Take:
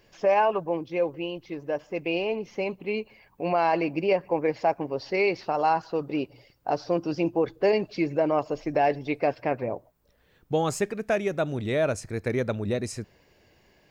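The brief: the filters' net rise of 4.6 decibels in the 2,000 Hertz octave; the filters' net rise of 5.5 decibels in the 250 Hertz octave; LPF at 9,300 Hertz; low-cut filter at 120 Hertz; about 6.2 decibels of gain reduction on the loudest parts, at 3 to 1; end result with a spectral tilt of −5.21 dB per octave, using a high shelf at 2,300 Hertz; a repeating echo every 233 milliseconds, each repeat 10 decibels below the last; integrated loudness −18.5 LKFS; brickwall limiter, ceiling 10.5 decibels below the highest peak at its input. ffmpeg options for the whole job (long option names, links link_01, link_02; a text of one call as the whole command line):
ffmpeg -i in.wav -af "highpass=120,lowpass=9300,equalizer=frequency=250:width_type=o:gain=8,equalizer=frequency=2000:width_type=o:gain=3.5,highshelf=frequency=2300:gain=4,acompressor=threshold=-24dB:ratio=3,alimiter=limit=-22dB:level=0:latency=1,aecho=1:1:233|466|699|932:0.316|0.101|0.0324|0.0104,volume=14dB" out.wav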